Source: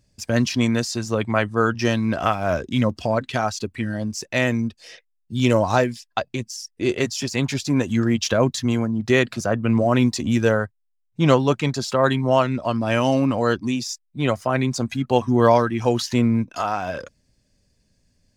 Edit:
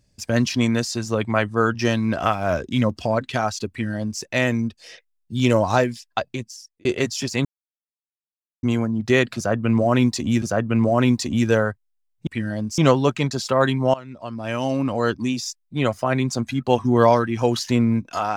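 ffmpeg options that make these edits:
ffmpeg -i in.wav -filter_complex "[0:a]asplit=8[link_01][link_02][link_03][link_04][link_05][link_06][link_07][link_08];[link_01]atrim=end=6.85,asetpts=PTS-STARTPTS,afade=type=out:start_time=6.26:duration=0.59[link_09];[link_02]atrim=start=6.85:end=7.45,asetpts=PTS-STARTPTS,afade=type=in:duration=0.004:curve=hsin,afade=type=out:start_time=0.596:duration=0.004:curve=hsin[link_10];[link_03]atrim=start=7.45:end=8.63,asetpts=PTS-STARTPTS,volume=0[link_11];[link_04]atrim=start=8.63:end=10.422,asetpts=PTS-STARTPTS,afade=type=in:duration=0.004:curve=hsin[link_12];[link_05]atrim=start=9.358:end=11.212[link_13];[link_06]atrim=start=3.698:end=4.212[link_14];[link_07]atrim=start=11.208:end=12.37,asetpts=PTS-STARTPTS,afade=type=out:start_time=1.158:duration=0.004:curve=hsin:silence=0.0944061[link_15];[link_08]atrim=start=12.37,asetpts=PTS-STARTPTS,afade=type=in:duration=1.29:silence=0.0944061[link_16];[link_09][link_10][link_11][link_12]concat=n=4:v=0:a=1[link_17];[link_17][link_13]acrossfade=duration=0.004:curve1=hsin:curve2=hsin[link_18];[link_18][link_14]acrossfade=duration=0.004:curve1=hsin:curve2=hsin[link_19];[link_15][link_16]concat=n=2:v=0:a=1[link_20];[link_19][link_20]acrossfade=duration=0.004:curve1=hsin:curve2=hsin" out.wav

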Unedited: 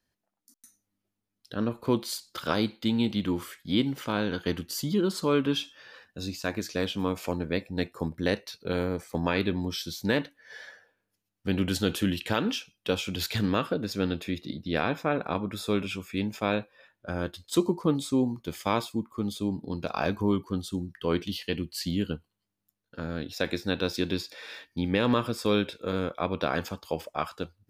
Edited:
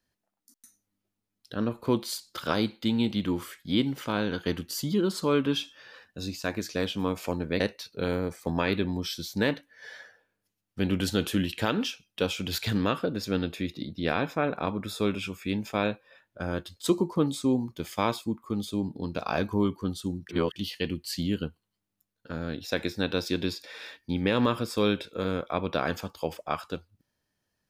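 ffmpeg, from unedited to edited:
ffmpeg -i in.wav -filter_complex "[0:a]asplit=4[link_01][link_02][link_03][link_04];[link_01]atrim=end=7.602[link_05];[link_02]atrim=start=8.278:end=20.972[link_06];[link_03]atrim=start=20.968:end=21.242,asetpts=PTS-STARTPTS,areverse[link_07];[link_04]atrim=start=21.238[link_08];[link_05][link_06]acrossfade=duration=0.004:curve1=hsin:curve2=hsin[link_09];[link_09][link_07]acrossfade=duration=0.004:curve1=hsin:curve2=hsin[link_10];[link_10][link_08]acrossfade=duration=0.004:curve1=hsin:curve2=hsin" out.wav

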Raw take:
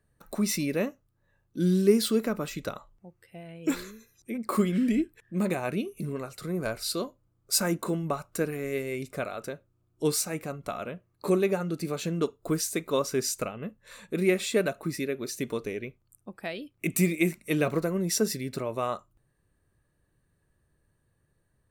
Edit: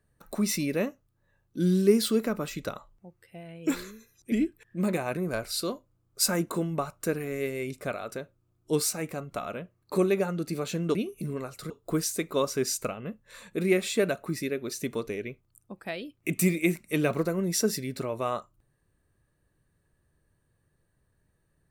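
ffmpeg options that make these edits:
ffmpeg -i in.wav -filter_complex "[0:a]asplit=5[link_01][link_02][link_03][link_04][link_05];[link_01]atrim=end=4.322[link_06];[link_02]atrim=start=4.888:end=5.742[link_07];[link_03]atrim=start=6.488:end=12.272[link_08];[link_04]atrim=start=5.738:end=6.492[link_09];[link_05]atrim=start=12.268[link_10];[link_06][link_07]acrossfade=duration=0.004:curve1=hsin:curve2=hsin[link_11];[link_11][link_08]acrossfade=duration=0.004:curve1=hsin:curve2=hsin[link_12];[link_12][link_09]acrossfade=duration=0.004:curve1=hsin:curve2=hsin[link_13];[link_13][link_10]acrossfade=duration=0.004:curve1=hsin:curve2=hsin" out.wav

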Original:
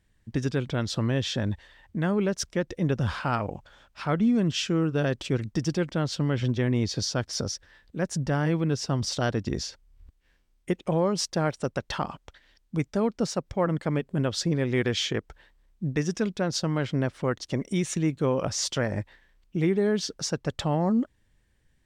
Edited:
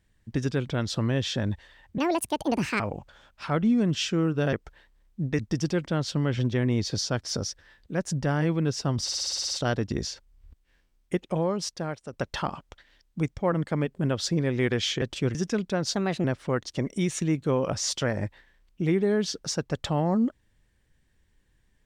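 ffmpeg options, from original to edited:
ffmpeg -i in.wav -filter_complex "[0:a]asplit=19[link_01][link_02][link_03][link_04][link_05][link_06][link_07][link_08][link_09][link_10][link_11][link_12][link_13][link_14][link_15][link_16][link_17][link_18][link_19];[link_01]atrim=end=1.984[link_20];[link_02]atrim=start=1.98:end=3.37,asetpts=PTS-STARTPTS,asetrate=74970,aresample=44100,atrim=end_sample=36058,asetpts=PTS-STARTPTS[link_21];[link_03]atrim=start=3.366:end=5.102[link_22];[link_04]atrim=start=15.158:end=16.022[link_23];[link_05]atrim=start=5.428:end=9.132[link_24];[link_06]atrim=start=9.068:end=9.132[link_25];[link_07]atrim=start=9.068:end=9.132[link_26];[link_08]atrim=start=9.068:end=9.132[link_27];[link_09]atrim=start=9.068:end=9.132[link_28];[link_10]atrim=start=9.068:end=9.132[link_29];[link_11]atrim=start=9.068:end=9.132[link_30];[link_12]atrim=start=9.068:end=9.132[link_31];[link_13]atrim=start=9.068:end=11.69,asetpts=PTS-STARTPTS,afade=type=out:start_time=1.642:duration=0.98:silence=0.281838[link_32];[link_14]atrim=start=11.69:end=12.932,asetpts=PTS-STARTPTS,afade=type=in:duration=0.004:curve=hsin:silence=0.281838[link_33];[link_15]atrim=start=13.508:end=15.162[link_34];[link_16]atrim=start=5.098:end=5.432[link_35];[link_17]atrim=start=16.018:end=16.614[link_36];[link_18]atrim=start=16.61:end=16.99,asetpts=PTS-STARTPTS,asetrate=55125,aresample=44100,atrim=end_sample=13406,asetpts=PTS-STARTPTS[link_37];[link_19]atrim=start=16.986[link_38];[link_20][link_21]acrossfade=duration=0.004:curve1=hsin:curve2=hsin[link_39];[link_39][link_22]acrossfade=duration=0.004:curve1=hsin:curve2=hsin[link_40];[link_40][link_23]acrossfade=duration=0.004:curve1=hsin:curve2=hsin[link_41];[link_41][link_24]acrossfade=duration=0.004:curve1=hsin:curve2=hsin[link_42];[link_42][link_25]acrossfade=duration=0.004:curve1=hsin:curve2=hsin[link_43];[link_43][link_26]acrossfade=duration=0.004:curve1=hsin:curve2=hsin[link_44];[link_44][link_27]acrossfade=duration=0.004:curve1=hsin:curve2=hsin[link_45];[link_45][link_28]acrossfade=duration=0.004:curve1=hsin:curve2=hsin[link_46];[link_46][link_29]acrossfade=duration=0.004:curve1=hsin:curve2=hsin[link_47];[link_47][link_30]acrossfade=duration=0.004:curve1=hsin:curve2=hsin[link_48];[link_48][link_31]acrossfade=duration=0.004:curve1=hsin:curve2=hsin[link_49];[link_32][link_33]concat=n=2:v=0:a=1[link_50];[link_49][link_50]acrossfade=duration=0.004:curve1=hsin:curve2=hsin[link_51];[link_51][link_34]acrossfade=duration=0.004:curve1=hsin:curve2=hsin[link_52];[link_52][link_35]acrossfade=duration=0.004:curve1=hsin:curve2=hsin[link_53];[link_53][link_36]acrossfade=duration=0.004:curve1=hsin:curve2=hsin[link_54];[link_54][link_37]acrossfade=duration=0.004:curve1=hsin:curve2=hsin[link_55];[link_55][link_38]acrossfade=duration=0.004:curve1=hsin:curve2=hsin" out.wav

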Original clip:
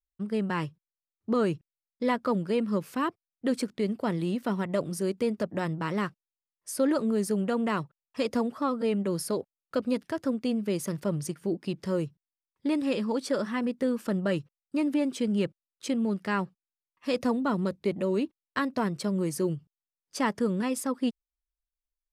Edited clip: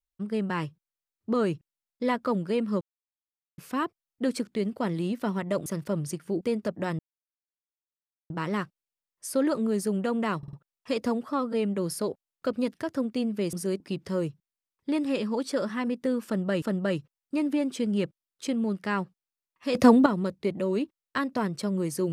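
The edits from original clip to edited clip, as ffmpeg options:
ffmpeg -i in.wav -filter_complex "[0:a]asplit=13[link_01][link_02][link_03][link_04][link_05][link_06][link_07][link_08][link_09][link_10][link_11][link_12][link_13];[link_01]atrim=end=2.81,asetpts=PTS-STARTPTS,afade=type=out:start_time=2.806:duration=0.004:curve=hsin,apad=pad_dur=0.77[link_14];[link_02]atrim=start=2.81:end=4.892,asetpts=PTS-STARTPTS,afade=type=in:duration=0.004:curve=hsin[link_15];[link_03]atrim=start=10.818:end=11.572[link_16];[link_04]atrim=start=5.158:end=5.74,asetpts=PTS-STARTPTS,afade=type=out:start_time=0.578:duration=0.004:curve=hsin,apad=pad_dur=1.31[link_17];[link_05]atrim=start=5.74:end=7.872,asetpts=PTS-STARTPTS,afade=type=in:duration=0.004:curve=hsin[link_18];[link_06]atrim=start=7.818:end=7.872[link_19];[link_07]atrim=start=7.818:end=7.872[link_20];[link_08]atrim=start=7.818:end=10.822[link_21];[link_09]atrim=start=4.888:end=5.162[link_22];[link_10]atrim=start=11.568:end=14.392[link_23];[link_11]atrim=start=14.028:end=17.162[link_24];[link_12]atrim=start=17.158:end=17.472,asetpts=PTS-STARTPTS,volume=10.5dB[link_25];[link_13]atrim=start=17.468[link_26];[link_14][link_15]concat=n=2:v=0:a=1[link_27];[link_27][link_16]acrossfade=duration=0.004:curve1=hsin:curve2=hsin[link_28];[link_17][link_18]concat=n=2:v=0:a=1[link_29];[link_28][link_29]acrossfade=duration=0.004:curve1=hsin:curve2=hsin[link_30];[link_30][link_19]acrossfade=duration=0.004:curve1=hsin:curve2=hsin[link_31];[link_31][link_20]acrossfade=duration=0.004:curve1=hsin:curve2=hsin[link_32];[link_32][link_21]acrossfade=duration=0.004:curve1=hsin:curve2=hsin[link_33];[link_33][link_22]acrossfade=duration=0.004:curve1=hsin:curve2=hsin[link_34];[link_34][link_23]acrossfade=duration=0.004:curve1=hsin:curve2=hsin[link_35];[link_35][link_24]acrossfade=duration=0.004:curve1=hsin:curve2=hsin[link_36];[link_36][link_25]acrossfade=duration=0.004:curve1=hsin:curve2=hsin[link_37];[link_37][link_26]acrossfade=duration=0.004:curve1=hsin:curve2=hsin" out.wav

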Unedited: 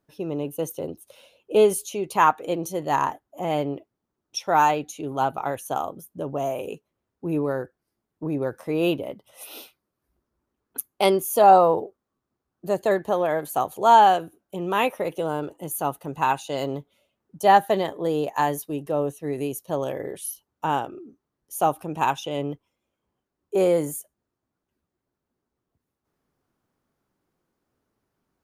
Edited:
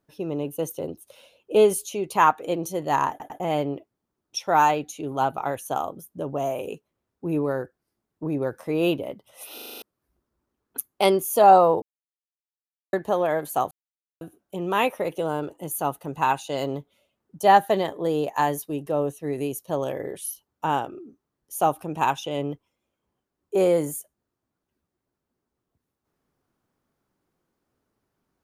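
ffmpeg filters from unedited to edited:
ffmpeg -i in.wav -filter_complex "[0:a]asplit=15[link_01][link_02][link_03][link_04][link_05][link_06][link_07][link_08][link_09][link_10][link_11][link_12][link_13][link_14][link_15];[link_01]atrim=end=3.202[link_16];[link_02]atrim=start=3.098:end=3.202[link_17];[link_03]atrim=start=3.098:end=3.202[link_18];[link_04]atrim=start=3.398:end=9.582[link_19];[link_05]atrim=start=9.538:end=9.582[link_20];[link_06]atrim=start=9.538:end=9.582[link_21];[link_07]atrim=start=9.538:end=9.582[link_22];[link_08]atrim=start=9.538:end=9.582[link_23];[link_09]atrim=start=9.538:end=9.582[link_24];[link_10]atrim=start=9.538:end=9.582[link_25];[link_11]atrim=start=9.818:end=11.82,asetpts=PTS-STARTPTS,afade=type=out:start_time=1.998:duration=0.004:curve=hsin[link_26];[link_12]atrim=start=11.82:end=12.93,asetpts=PTS-STARTPTS,volume=0[link_27];[link_13]atrim=start=12.93:end=13.71,asetpts=PTS-STARTPTS,afade=type=in:duration=0.004:curve=hsin,afade=type=out:start_time=0.776:duration=0.004:curve=hsin[link_28];[link_14]atrim=start=13.71:end=14.21,asetpts=PTS-STARTPTS,volume=0[link_29];[link_15]atrim=start=14.21,asetpts=PTS-STARTPTS,afade=type=in:duration=0.004:curve=hsin[link_30];[link_16][link_17]acrossfade=duration=0.004:curve1=hsin:curve2=hsin[link_31];[link_31][link_18]acrossfade=duration=0.004:curve1=hsin:curve2=hsin[link_32];[link_32][link_19]acrossfade=duration=0.004:curve1=hsin:curve2=hsin[link_33];[link_33][link_20]acrossfade=duration=0.004:curve1=hsin:curve2=hsin[link_34];[link_34][link_21]acrossfade=duration=0.004:curve1=hsin:curve2=hsin[link_35];[link_35][link_22]acrossfade=duration=0.004:curve1=hsin:curve2=hsin[link_36];[link_36][link_23]acrossfade=duration=0.004:curve1=hsin:curve2=hsin[link_37];[link_37][link_24]acrossfade=duration=0.004:curve1=hsin:curve2=hsin[link_38];[link_38][link_25]acrossfade=duration=0.004:curve1=hsin:curve2=hsin[link_39];[link_26][link_27][link_28][link_29][link_30]concat=n=5:v=0:a=1[link_40];[link_39][link_40]acrossfade=duration=0.004:curve1=hsin:curve2=hsin" out.wav

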